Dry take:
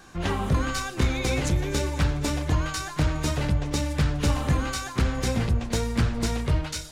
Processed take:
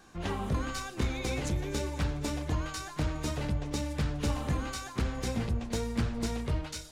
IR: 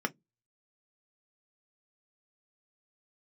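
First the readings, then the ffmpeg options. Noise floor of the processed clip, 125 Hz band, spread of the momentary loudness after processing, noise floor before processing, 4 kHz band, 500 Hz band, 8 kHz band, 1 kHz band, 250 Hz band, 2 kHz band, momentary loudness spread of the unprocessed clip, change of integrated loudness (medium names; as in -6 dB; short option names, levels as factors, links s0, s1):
-45 dBFS, -8.0 dB, 3 LU, -38 dBFS, -7.5 dB, -6.0 dB, -7.5 dB, -7.0 dB, -6.0 dB, -8.0 dB, 3 LU, -7.5 dB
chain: -filter_complex "[0:a]asplit=2[s0][s1];[1:a]atrim=start_sample=2205,lowpass=1200[s2];[s1][s2]afir=irnorm=-1:irlink=0,volume=0.106[s3];[s0][s3]amix=inputs=2:normalize=0,volume=0.422"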